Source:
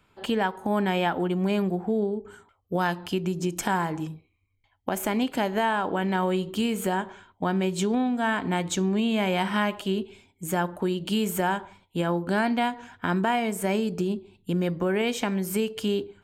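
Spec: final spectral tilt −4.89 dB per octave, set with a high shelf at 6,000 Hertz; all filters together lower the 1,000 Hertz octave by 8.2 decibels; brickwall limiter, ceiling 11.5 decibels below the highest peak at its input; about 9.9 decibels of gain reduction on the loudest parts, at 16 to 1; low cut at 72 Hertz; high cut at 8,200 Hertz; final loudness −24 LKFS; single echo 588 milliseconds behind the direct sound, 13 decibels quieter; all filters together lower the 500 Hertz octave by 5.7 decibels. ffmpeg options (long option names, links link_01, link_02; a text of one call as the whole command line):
ffmpeg -i in.wav -af "highpass=72,lowpass=8200,equalizer=frequency=500:width_type=o:gain=-6,equalizer=frequency=1000:width_type=o:gain=-8.5,highshelf=frequency=6000:gain=4,acompressor=threshold=-33dB:ratio=16,alimiter=level_in=7dB:limit=-24dB:level=0:latency=1,volume=-7dB,aecho=1:1:588:0.224,volume=15.5dB" out.wav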